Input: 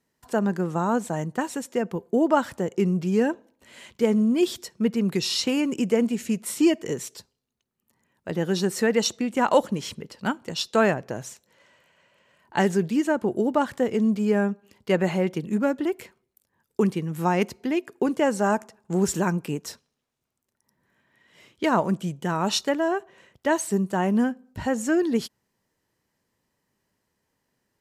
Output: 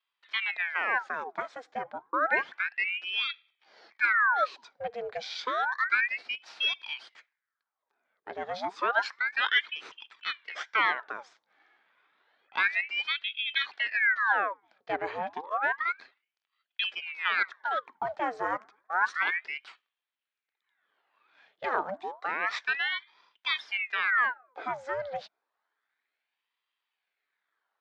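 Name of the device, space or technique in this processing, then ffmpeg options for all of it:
voice changer toy: -filter_complex "[0:a]aeval=exprs='val(0)*sin(2*PI*1600*n/s+1600*0.85/0.3*sin(2*PI*0.3*n/s))':c=same,highpass=490,equalizer=f=550:t=q:w=4:g=-4,equalizer=f=1.6k:t=q:w=4:g=4,equalizer=f=2.8k:t=q:w=4:g=-8,lowpass=f=3.9k:w=0.5412,lowpass=f=3.9k:w=1.3066,asettb=1/sr,asplit=3[a][b][c];[a]atrim=end=2.784[d];[b]atrim=start=2.78:end=4.11,asetpts=PTS-STARTPTS,afade=t=in:d=0.004:c=qsin,afade=t=out:st=1.326:d=0.004:c=qsin,highpass=f=170:w=0.5412,highpass=f=170:w=1.3066[e];[c]atrim=start=4.106[f];[d][e]acrossfade=d=0.004:c1=hsin:c2=qsin[g];[g][f]acrossfade=d=0.004:c1=qsin:c2=hsin,volume=-2.5dB"

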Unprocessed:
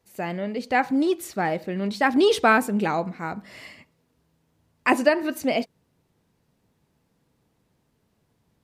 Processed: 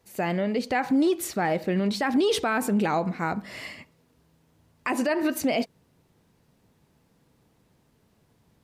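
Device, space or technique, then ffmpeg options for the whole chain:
stacked limiters: -af "alimiter=limit=-12dB:level=0:latency=1:release=179,alimiter=limit=-17dB:level=0:latency=1:release=39,alimiter=limit=-20.5dB:level=0:latency=1:release=101,volume=4.5dB"

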